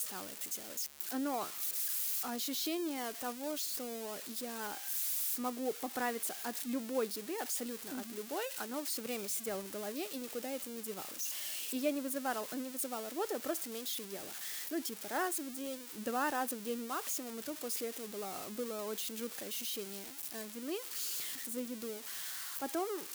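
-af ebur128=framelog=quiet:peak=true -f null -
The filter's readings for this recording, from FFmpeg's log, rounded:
Integrated loudness:
  I:         -37.6 LUFS
  Threshold: -47.6 LUFS
Loudness range:
  LRA:         3.2 LU
  Threshold: -57.6 LUFS
  LRA low:   -39.1 LUFS
  LRA high:  -35.9 LUFS
True peak:
  Peak:      -21.9 dBFS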